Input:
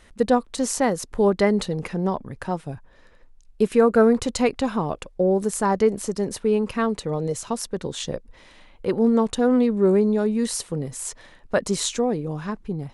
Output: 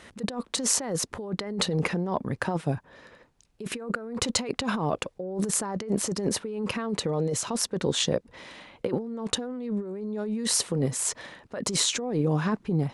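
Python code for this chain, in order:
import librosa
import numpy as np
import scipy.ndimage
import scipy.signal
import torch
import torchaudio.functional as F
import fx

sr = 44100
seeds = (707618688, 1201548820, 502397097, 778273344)

y = scipy.signal.sosfilt(scipy.signal.butter(2, 110.0, 'highpass', fs=sr, output='sos'), x)
y = fx.high_shelf(y, sr, hz=9200.0, db=-7.0)
y = fx.over_compress(y, sr, threshold_db=-29.0, ratio=-1.0)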